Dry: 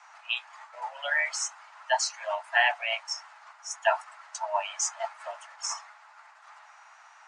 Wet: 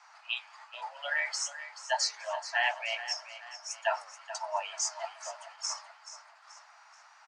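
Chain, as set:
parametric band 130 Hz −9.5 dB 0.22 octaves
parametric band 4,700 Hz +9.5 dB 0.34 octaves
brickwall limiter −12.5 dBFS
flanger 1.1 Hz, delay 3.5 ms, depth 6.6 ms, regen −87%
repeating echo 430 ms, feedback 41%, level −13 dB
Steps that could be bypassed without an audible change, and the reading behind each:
parametric band 130 Hz: nothing at its input below 510 Hz

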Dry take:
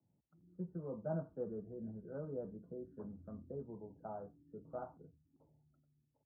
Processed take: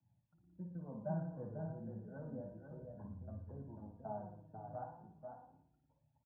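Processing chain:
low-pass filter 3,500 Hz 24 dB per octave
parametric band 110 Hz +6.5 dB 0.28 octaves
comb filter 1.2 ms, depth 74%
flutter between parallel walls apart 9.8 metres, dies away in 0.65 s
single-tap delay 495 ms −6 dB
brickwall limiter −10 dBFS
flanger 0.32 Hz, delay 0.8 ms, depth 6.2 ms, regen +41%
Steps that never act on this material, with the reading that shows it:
low-pass filter 3,500 Hz: nothing at its input above 1,500 Hz
brickwall limiter −10 dBFS: peak of its input −23.5 dBFS

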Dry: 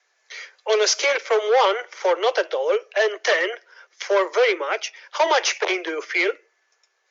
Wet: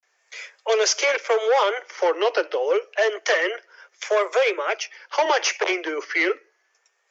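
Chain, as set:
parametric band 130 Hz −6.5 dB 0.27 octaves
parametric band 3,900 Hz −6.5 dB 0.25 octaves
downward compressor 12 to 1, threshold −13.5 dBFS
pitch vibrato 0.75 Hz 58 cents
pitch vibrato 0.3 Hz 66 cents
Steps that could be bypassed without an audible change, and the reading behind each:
parametric band 130 Hz: nothing at its input below 300 Hz

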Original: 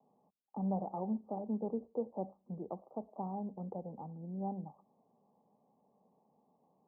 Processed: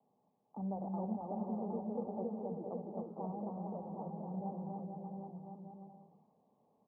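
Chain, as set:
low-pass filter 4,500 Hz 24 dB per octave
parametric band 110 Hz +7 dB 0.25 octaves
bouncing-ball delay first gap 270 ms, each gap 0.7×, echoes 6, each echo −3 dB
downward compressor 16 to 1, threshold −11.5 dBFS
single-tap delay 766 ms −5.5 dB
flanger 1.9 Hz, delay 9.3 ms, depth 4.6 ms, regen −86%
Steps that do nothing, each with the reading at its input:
low-pass filter 4,500 Hz: nothing at its input above 1,000 Hz
downward compressor, threshold −11.5 dBFS: peak of its input −23.0 dBFS

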